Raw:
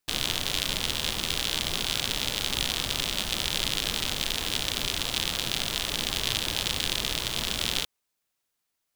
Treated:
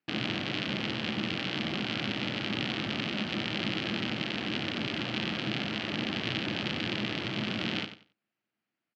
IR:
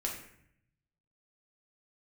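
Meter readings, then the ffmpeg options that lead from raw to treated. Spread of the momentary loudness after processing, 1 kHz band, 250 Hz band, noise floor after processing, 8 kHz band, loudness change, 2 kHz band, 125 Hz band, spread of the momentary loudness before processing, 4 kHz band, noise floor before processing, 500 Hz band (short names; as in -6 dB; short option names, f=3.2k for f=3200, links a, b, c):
1 LU, -2.0 dB, +7.5 dB, under -85 dBFS, -22.5 dB, -5.0 dB, -0.5 dB, +1.5 dB, 1 LU, -7.5 dB, -81 dBFS, +0.5 dB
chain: -af "highpass=f=110:w=0.5412,highpass=f=110:w=1.3066,equalizer=f=120:t=q:w=4:g=5,equalizer=f=210:t=q:w=4:g=10,equalizer=f=320:t=q:w=4:g=8,equalizer=f=450:t=q:w=4:g=-3,equalizer=f=1k:t=q:w=4:g=-6,equalizer=f=3.6k:t=q:w=4:g=-9,lowpass=f=3.6k:w=0.5412,lowpass=f=3.6k:w=1.3066,aecho=1:1:92|184|276:0.282|0.0592|0.0124"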